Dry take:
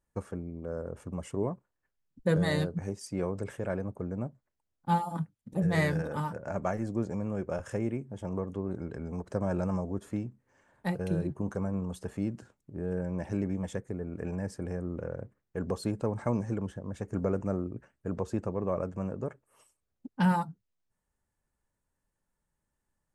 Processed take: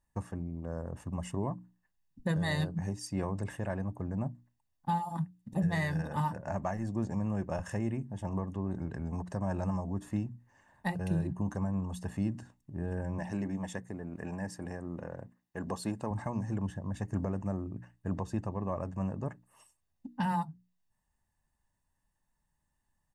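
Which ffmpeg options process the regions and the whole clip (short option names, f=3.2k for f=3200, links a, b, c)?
-filter_complex "[0:a]asettb=1/sr,asplit=3[a][b][c];[a]atrim=end=13.184[d];[b]atrim=start=13.18:end=16.11,asetpts=PTS-STARTPTS,afade=t=in:d=0.004:c=qsin,afade=t=out:st=2.926:d=0.004:c=qsin,highpass=54,equalizer=f=78:t=o:w=2:g=-10[e];[c]atrim=start=16.106[f];[d][e]acrossfade=d=0.004:c1=hsin:c2=qsin[g];[g][f]acrossfade=d=0.004:c1=qsin:c2=hsin,bandreject=f=60:t=h:w=6,bandreject=f=120:t=h:w=6,bandreject=f=180:t=h:w=6,bandreject=f=240:t=h:w=6,bandreject=f=300:t=h:w=6,aecho=1:1:1.1:0.58,alimiter=limit=-21.5dB:level=0:latency=1:release=452"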